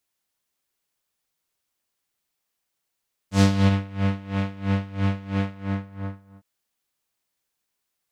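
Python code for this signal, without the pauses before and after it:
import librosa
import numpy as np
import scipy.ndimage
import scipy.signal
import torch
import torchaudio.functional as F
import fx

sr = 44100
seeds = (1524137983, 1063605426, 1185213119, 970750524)

y = fx.sub_patch_tremolo(sr, seeds[0], note=55, wave='triangle', wave2='saw', interval_st=-12, detune_cents=16, level2_db=-9.0, sub_db=-2.5, noise_db=-11.5, kind='lowpass', cutoff_hz=1300.0, q=1.2, env_oct=2.5, env_decay_s=0.48, env_sustain_pct=40, attack_ms=299.0, decay_s=0.09, sustain_db=-17, release_s=1.03, note_s=2.08, lfo_hz=3.0, tremolo_db=20.0)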